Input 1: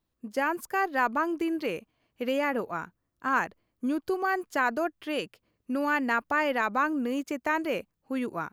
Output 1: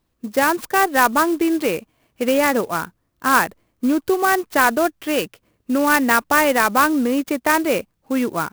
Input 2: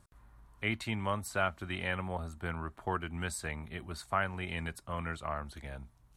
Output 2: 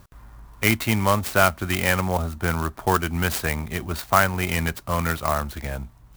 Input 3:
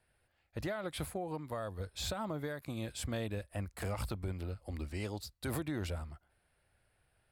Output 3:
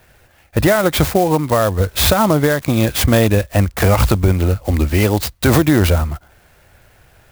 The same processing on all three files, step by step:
converter with an unsteady clock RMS 0.038 ms
normalise the peak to −3 dBFS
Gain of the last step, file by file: +10.5, +13.5, +25.0 decibels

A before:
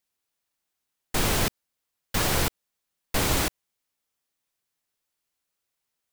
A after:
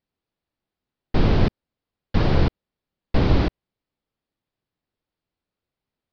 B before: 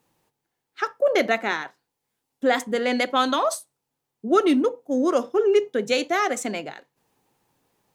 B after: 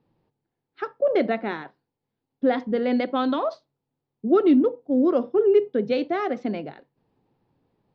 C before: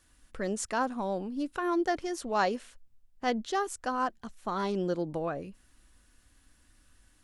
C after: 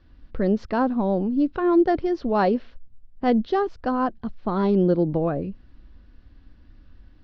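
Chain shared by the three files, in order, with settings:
Butterworth low-pass 4,900 Hz 48 dB per octave
tilt shelving filter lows +8 dB, about 670 Hz
loudness normalisation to −23 LKFS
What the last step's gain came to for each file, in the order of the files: +2.5, −2.5, +7.0 decibels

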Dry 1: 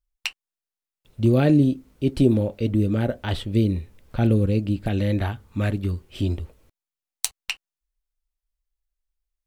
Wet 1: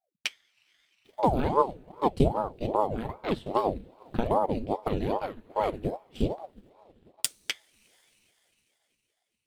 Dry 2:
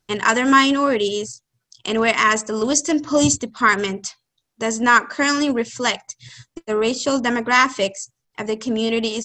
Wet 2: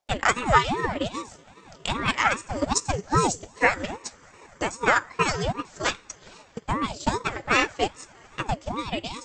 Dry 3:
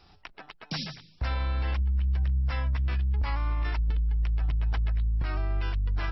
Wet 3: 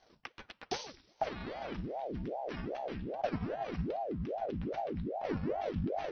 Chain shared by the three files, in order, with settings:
coupled-rooms reverb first 0.28 s, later 4.2 s, from −20 dB, DRR 7 dB
transient designer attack +8 dB, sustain −7 dB
ring modulator whose carrier an LFO sweeps 430 Hz, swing 75%, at 2.5 Hz
level −7 dB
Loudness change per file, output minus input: −6.5, −6.5, −8.5 LU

